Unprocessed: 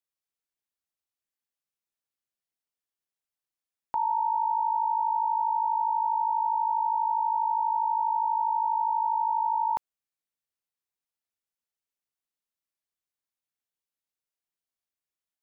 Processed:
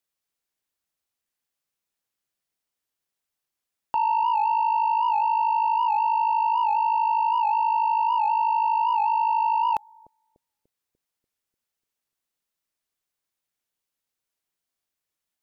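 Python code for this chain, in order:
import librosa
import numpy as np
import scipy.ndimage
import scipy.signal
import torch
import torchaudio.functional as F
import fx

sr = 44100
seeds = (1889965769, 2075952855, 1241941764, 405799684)

y = 10.0 ** (-23.0 / 20.0) * np.tanh(x / 10.0 ** (-23.0 / 20.0))
y = fx.echo_bbd(y, sr, ms=294, stages=1024, feedback_pct=55, wet_db=-13.5)
y = fx.record_warp(y, sr, rpm=78.0, depth_cents=100.0)
y = F.gain(torch.from_numpy(y), 6.5).numpy()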